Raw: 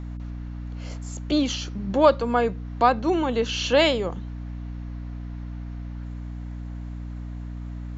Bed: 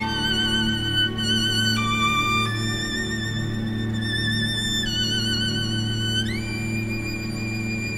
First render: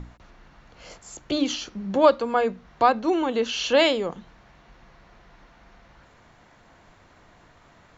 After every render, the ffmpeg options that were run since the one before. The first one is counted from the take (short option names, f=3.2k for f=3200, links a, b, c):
-af "bandreject=f=60:t=h:w=6,bandreject=f=120:t=h:w=6,bandreject=f=180:t=h:w=6,bandreject=f=240:t=h:w=6,bandreject=f=300:t=h:w=6"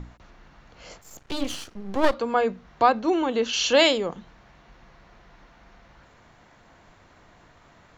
-filter_complex "[0:a]asettb=1/sr,asplit=3[a][b][c];[a]atrim=end=1.014[d];[b]atrim=start=1.01:end=2.14,asetpts=PTS-STARTPTS,afade=t=in:d=0.004:c=qsin,afade=t=out:st=1.126:d=0.004:c=qsin,aeval=exprs='max(val(0),0)':c=same[e];[c]atrim=start=2.136[f];[d][e]acrossfade=d=0.004:c1=hsin:c2=qsin[g];[g][f]acrossfade=d=0.004:c1=qsin:c2=hsin,asettb=1/sr,asplit=3[h][i][j];[h]atrim=end=3.534[k];[i]atrim=start=3.53:end=3.98,asetpts=PTS-STARTPTS,afade=t=in:d=0.004:c=qsin,afade=t=out:st=0.446:d=0.004:c=qsin,highshelf=f=5.4k:g=11.5[l];[j]atrim=start=3.976[m];[k][l]acrossfade=d=0.004:c1=hsin:c2=qsin[n];[n][m]acrossfade=d=0.004:c1=qsin:c2=hsin"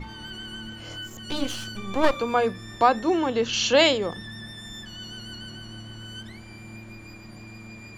-filter_complex "[1:a]volume=-16dB[a];[0:a][a]amix=inputs=2:normalize=0"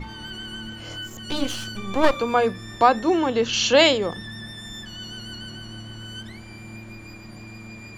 -af "volume=2.5dB"